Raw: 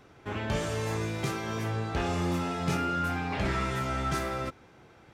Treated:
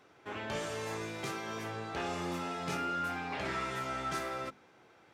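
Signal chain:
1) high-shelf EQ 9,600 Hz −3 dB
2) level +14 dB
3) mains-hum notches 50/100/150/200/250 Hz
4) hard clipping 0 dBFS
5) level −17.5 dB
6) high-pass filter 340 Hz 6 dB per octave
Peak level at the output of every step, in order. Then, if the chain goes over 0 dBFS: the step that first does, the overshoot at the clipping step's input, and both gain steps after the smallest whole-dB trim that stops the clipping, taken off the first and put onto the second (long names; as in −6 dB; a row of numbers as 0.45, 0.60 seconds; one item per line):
−17.0, −3.0, −3.5, −3.5, −21.0, −23.5 dBFS
no step passes full scale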